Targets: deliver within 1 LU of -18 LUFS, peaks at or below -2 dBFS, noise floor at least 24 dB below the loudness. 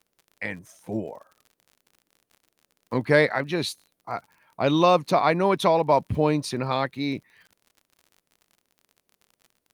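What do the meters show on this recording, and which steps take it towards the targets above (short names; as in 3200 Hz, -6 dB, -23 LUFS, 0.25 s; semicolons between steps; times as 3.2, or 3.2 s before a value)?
ticks 49/s; loudness -24.0 LUFS; peak -5.5 dBFS; loudness target -18.0 LUFS
-> de-click; gain +6 dB; limiter -2 dBFS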